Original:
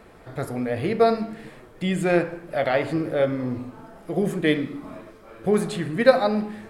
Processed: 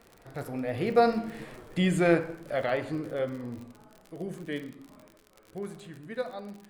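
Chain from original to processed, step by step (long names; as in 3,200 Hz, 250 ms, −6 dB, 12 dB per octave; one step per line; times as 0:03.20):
source passing by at 0:01.60, 14 m/s, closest 7.9 metres
surface crackle 54 per second −38 dBFS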